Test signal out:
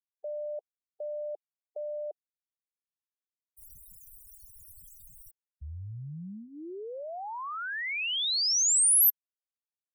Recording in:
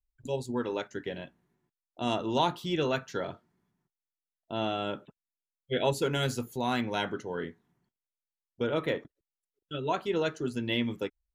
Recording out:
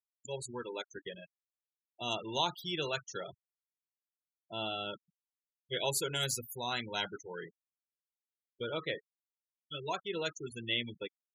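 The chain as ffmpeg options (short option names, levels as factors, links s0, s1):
-af "crystalizer=i=5.5:c=0,equalizer=f=260:t=o:w=0.24:g=-12.5,afftfilt=real='re*gte(hypot(re,im),0.0355)':imag='im*gte(hypot(re,im),0.0355)':win_size=1024:overlap=0.75,volume=0.376"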